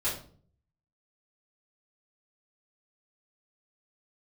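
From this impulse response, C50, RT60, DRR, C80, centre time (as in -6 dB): 6.0 dB, 0.45 s, -12.0 dB, 10.5 dB, 34 ms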